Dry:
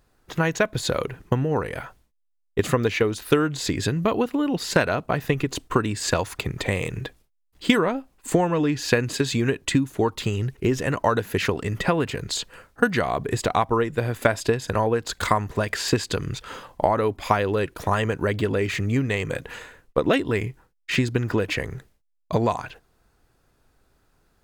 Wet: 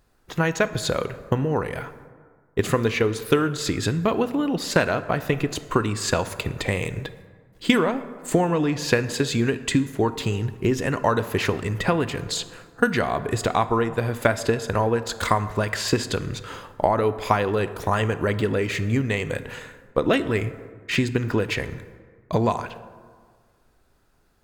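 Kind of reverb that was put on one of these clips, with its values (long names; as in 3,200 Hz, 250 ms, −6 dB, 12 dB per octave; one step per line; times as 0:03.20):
dense smooth reverb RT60 1.8 s, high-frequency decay 0.45×, DRR 12 dB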